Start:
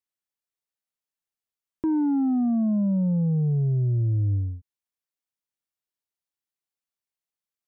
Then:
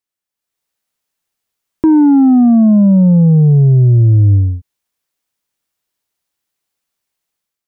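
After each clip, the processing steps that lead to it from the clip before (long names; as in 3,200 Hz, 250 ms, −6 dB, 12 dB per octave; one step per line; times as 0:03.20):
automatic gain control gain up to 10 dB
level +5 dB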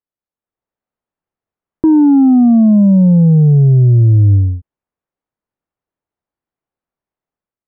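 Bessel low-pass filter 910 Hz, order 2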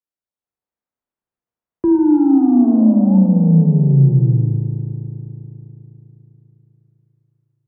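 frequency shifter +20 Hz
sound drawn into the spectrogram rise, 0:02.50–0:03.18, 330–910 Hz −31 dBFS
spring reverb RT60 3.7 s, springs 36 ms, chirp 55 ms, DRR 2.5 dB
level −6 dB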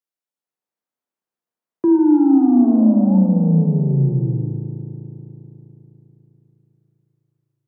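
high-pass filter 180 Hz 12 dB per octave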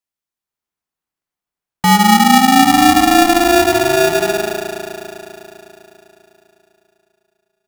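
ring modulator with a square carrier 520 Hz
level +3 dB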